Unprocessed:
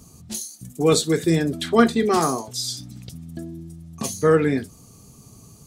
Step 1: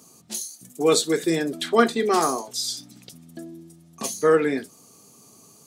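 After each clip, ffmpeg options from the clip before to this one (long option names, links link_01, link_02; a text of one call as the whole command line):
ffmpeg -i in.wav -af "highpass=300" out.wav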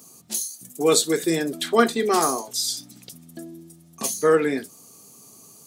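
ffmpeg -i in.wav -af "highshelf=frequency=9600:gain=10" out.wav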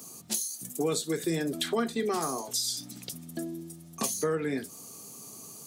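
ffmpeg -i in.wav -filter_complex "[0:a]acrossover=split=150[link_01][link_02];[link_02]acompressor=threshold=-30dB:ratio=8[link_03];[link_01][link_03]amix=inputs=2:normalize=0,volume=2.5dB" out.wav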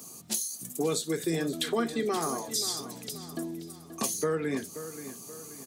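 ffmpeg -i in.wav -filter_complex "[0:a]asplit=2[link_01][link_02];[link_02]adelay=530,lowpass=frequency=4300:poles=1,volume=-12dB,asplit=2[link_03][link_04];[link_04]adelay=530,lowpass=frequency=4300:poles=1,volume=0.47,asplit=2[link_05][link_06];[link_06]adelay=530,lowpass=frequency=4300:poles=1,volume=0.47,asplit=2[link_07][link_08];[link_08]adelay=530,lowpass=frequency=4300:poles=1,volume=0.47,asplit=2[link_09][link_10];[link_10]adelay=530,lowpass=frequency=4300:poles=1,volume=0.47[link_11];[link_01][link_03][link_05][link_07][link_09][link_11]amix=inputs=6:normalize=0" out.wav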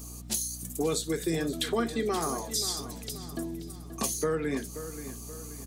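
ffmpeg -i in.wav -af "aeval=exprs='val(0)+0.00708*(sin(2*PI*60*n/s)+sin(2*PI*2*60*n/s)/2+sin(2*PI*3*60*n/s)/3+sin(2*PI*4*60*n/s)/4+sin(2*PI*5*60*n/s)/5)':channel_layout=same" out.wav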